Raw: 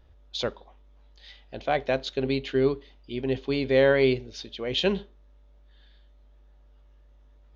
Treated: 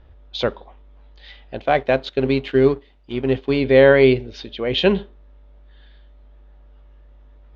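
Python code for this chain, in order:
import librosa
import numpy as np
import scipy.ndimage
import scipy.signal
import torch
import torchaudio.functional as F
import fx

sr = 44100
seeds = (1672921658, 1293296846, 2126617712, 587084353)

y = fx.law_mismatch(x, sr, coded='A', at=(1.57, 3.61))
y = scipy.signal.sosfilt(scipy.signal.butter(2, 3200.0, 'lowpass', fs=sr, output='sos'), y)
y = y * 10.0 ** (8.5 / 20.0)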